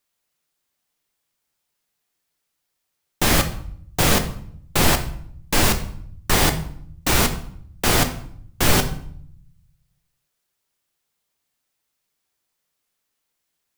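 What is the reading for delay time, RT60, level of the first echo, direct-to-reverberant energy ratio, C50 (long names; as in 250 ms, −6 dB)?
no echo audible, 0.65 s, no echo audible, 6.5 dB, 12.0 dB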